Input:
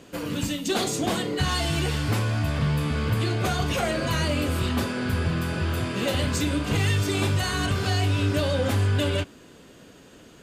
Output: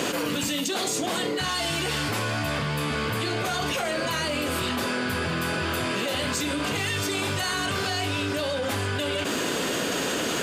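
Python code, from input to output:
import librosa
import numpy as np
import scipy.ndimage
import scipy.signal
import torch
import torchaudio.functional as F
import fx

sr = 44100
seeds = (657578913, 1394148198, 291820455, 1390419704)

y = fx.highpass(x, sr, hz=450.0, slope=6)
y = fx.env_flatten(y, sr, amount_pct=100)
y = y * librosa.db_to_amplitude(-2.5)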